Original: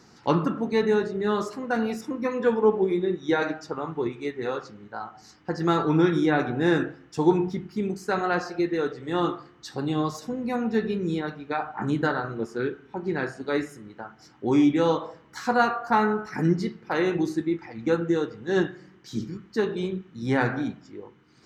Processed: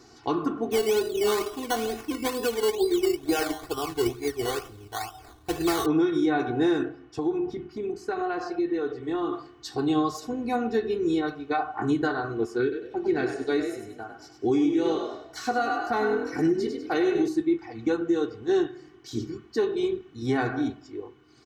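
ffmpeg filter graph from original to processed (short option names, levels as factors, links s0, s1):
-filter_complex "[0:a]asettb=1/sr,asplit=3[s0][s1][s2];[s0]atrim=end=0.714[s3];[s1]atrim=start=0.71:end=5.86,asetpts=PTS-STARTPTS,afade=t=in:d=0.004:c=qsin,afade=t=out:st=5.146:d=0.004:c=qsin,asubboost=boost=9:cutoff=71,acrusher=samples=14:mix=1:aa=0.000001:lfo=1:lforange=8.4:lforate=2.2[s4];[s2]atrim=start=5.856[s5];[s3][s4]acrossfade=d=0.004:c1=hsin:c2=qsin[s6];[s6][s5]acrossfade=d=0.004:c1=qsin:c2=hsin,asettb=1/sr,asplit=3[s7][s8][s9];[s7]atrim=end=6.884[s10];[s8]atrim=start=6.88:end=9.33,asetpts=PTS-STARTPTS,afade=t=in:d=0.004:c=qsin,afade=t=out:st=2.446:d=0.004:c=qsin,lowpass=f=2700:p=1,acompressor=threshold=0.0447:ratio=6:attack=3.2:release=140:knee=1:detection=peak[s11];[s9]atrim=start=9.326[s12];[s10][s11]acrossfade=d=0.004:c1=hsin:c2=qsin[s13];[s13][s12]acrossfade=d=0.004:c1=qsin:c2=hsin,asettb=1/sr,asplit=3[s14][s15][s16];[s14]atrim=end=12.624[s17];[s15]atrim=start=12.62:end=17.28,asetpts=PTS-STARTPTS,afade=t=in:d=0.004:c=qsin,afade=t=out:st=4.656:d=0.004:c=qsin,equalizer=f=990:t=o:w=0.37:g=-9.5,asplit=5[s18][s19][s20][s21][s22];[s19]adelay=99,afreqshift=42,volume=0.422[s23];[s20]adelay=198,afreqshift=84,volume=0.157[s24];[s21]adelay=297,afreqshift=126,volume=0.0575[s25];[s22]adelay=396,afreqshift=168,volume=0.0214[s26];[s18][s23][s24][s25][s26]amix=inputs=5:normalize=0,atrim=end_sample=205506[s27];[s16]atrim=start=17.276[s28];[s17][s27]acrossfade=d=0.004:c1=hsin:c2=qsin[s29];[s29][s28]acrossfade=d=0.004:c1=qsin:c2=hsin,equalizer=f=1800:t=o:w=0.68:g=-4.5,aecho=1:1:2.7:0.88,alimiter=limit=0.168:level=0:latency=1:release=259"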